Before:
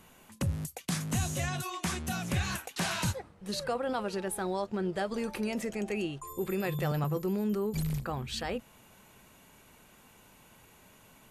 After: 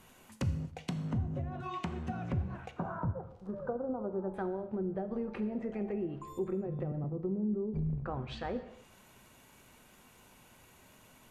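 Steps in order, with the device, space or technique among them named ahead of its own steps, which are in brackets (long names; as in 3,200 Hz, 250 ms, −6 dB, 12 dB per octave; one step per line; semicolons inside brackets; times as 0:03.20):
0:02.71–0:04.34: Butterworth low-pass 1,400 Hz 48 dB per octave
vinyl LP (surface crackle 42 per second −49 dBFS; pink noise bed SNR 41 dB)
treble cut that deepens with the level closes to 390 Hz, closed at −27.5 dBFS
reverb whose tail is shaped and stops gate 300 ms falling, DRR 8.5 dB
level −2 dB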